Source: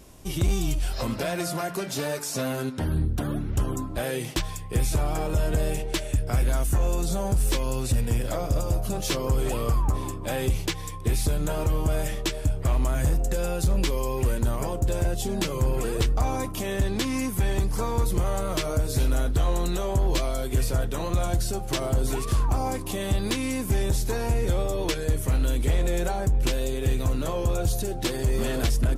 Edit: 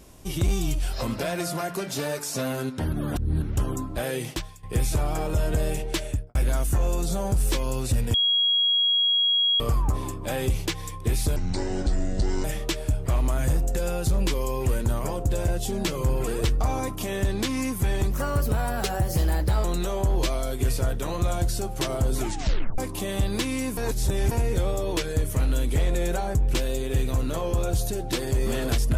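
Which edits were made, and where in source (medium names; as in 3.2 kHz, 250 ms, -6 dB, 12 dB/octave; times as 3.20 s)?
2.93–3.42 s: reverse
4.29–4.63 s: fade out quadratic, to -14.5 dB
6.05–6.35 s: studio fade out
8.14–9.60 s: bleep 3.3 kHz -18.5 dBFS
11.36–12.01 s: speed 60%
17.68–19.56 s: speed 123%
22.11 s: tape stop 0.59 s
23.69–24.23 s: reverse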